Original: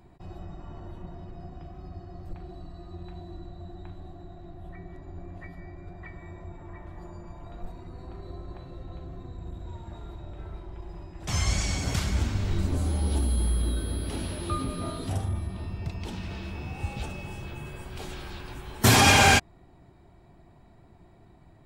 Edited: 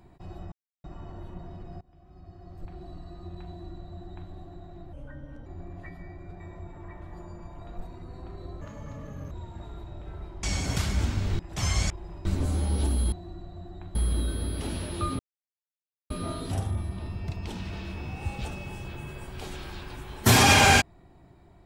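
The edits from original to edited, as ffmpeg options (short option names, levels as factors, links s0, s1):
-filter_complex "[0:a]asplit=15[s0][s1][s2][s3][s4][s5][s6][s7][s8][s9][s10][s11][s12][s13][s14];[s0]atrim=end=0.52,asetpts=PTS-STARTPTS,afade=t=out:st=0.516:d=0.004:c=hsin,apad=pad_dur=0.32[s15];[s1]atrim=start=0.52:end=1.49,asetpts=PTS-STARTPTS,afade=t=in:d=0.004:c=hsin,afade=t=out:st=0.966:d=0.004:c=hsin:silence=0.0630957[s16];[s2]atrim=start=1.49:end=4.614,asetpts=PTS-STARTPTS,afade=t=in:d=1.08:silence=0.0630957[s17];[s3]atrim=start=4.61:end=5.04,asetpts=PTS-STARTPTS,asetrate=35721,aresample=44100,atrim=end_sample=23411,asetpts=PTS-STARTPTS[s18];[s4]atrim=start=5.036:end=5.982[s19];[s5]atrim=start=6.248:end=8.464[s20];[s6]atrim=start=8.46:end=9.63,asetpts=PTS-STARTPTS,asetrate=73647,aresample=44100,atrim=end_sample=30896,asetpts=PTS-STARTPTS[s21];[s7]atrim=start=9.626:end=10.752[s22];[s8]atrim=start=11.608:end=12.572[s23];[s9]atrim=start=11.098:end=11.612[s24];[s10]atrim=start=10.748:end=11.102[s25];[s11]atrim=start=12.568:end=13.442[s26];[s12]atrim=start=3.158:end=3.992[s27];[s13]atrim=start=13.438:end=14.68,asetpts=PTS-STARTPTS,afade=t=out:st=1.238:d=0.004:c=hsin,apad=pad_dur=0.91[s28];[s14]atrim=start=14.68,asetpts=PTS-STARTPTS,afade=t=in:d=0.004:c=hsin[s29];[s15][s16][s17]concat=n=3:v=0:a=1[s30];[s30][s18]acrossfade=d=0.004:c1=hsin:c2=hsin[s31];[s31][s19]acrossfade=d=0.004:c1=hsin:c2=hsin[s32];[s32][s20]acrossfade=d=0.004:c1=hsin:c2=hsin[s33];[s33][s21]acrossfade=d=0.004:c1=hsin:c2=hsin[s34];[s34][s22]acrossfade=d=0.004:c1=hsin:c2=hsin[s35];[s35][s23]acrossfade=d=0.004:c1=hsin:c2=hsin[s36];[s36][s24]acrossfade=d=0.004:c1=hsin:c2=hsin[s37];[s37][s25]acrossfade=d=0.004:c1=hsin:c2=hsin[s38];[s38][s26]acrossfade=d=0.004:c1=hsin:c2=hsin[s39];[s39][s27]acrossfade=d=0.004:c1=hsin:c2=hsin[s40];[s28][s29]concat=n=2:v=0:a=1[s41];[s40][s41]acrossfade=d=0.004:c1=hsin:c2=hsin"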